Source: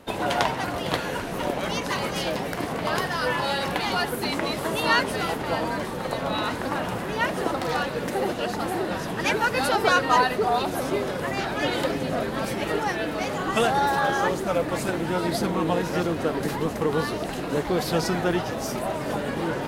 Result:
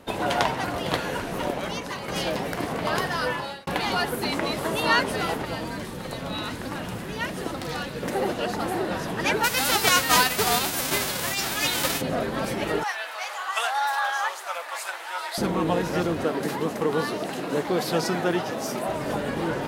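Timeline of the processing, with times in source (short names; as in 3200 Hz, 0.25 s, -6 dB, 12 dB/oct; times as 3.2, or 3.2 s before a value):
1.38–2.08 fade out, to -8.5 dB
3.2–3.67 fade out
5.45–8.03 bell 800 Hz -8 dB 2.6 oct
9.43–12 spectral whitening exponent 0.3
12.83–15.38 HPF 810 Hz 24 dB/oct
16.24–18.89 HPF 160 Hz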